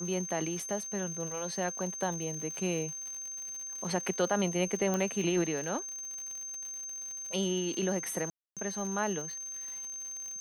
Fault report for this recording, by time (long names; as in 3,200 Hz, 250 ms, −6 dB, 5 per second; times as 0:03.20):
surface crackle 140 per second −39 dBFS
whistle 6,300 Hz −38 dBFS
0:04.94: click −18 dBFS
0:08.30–0:08.57: drop-out 267 ms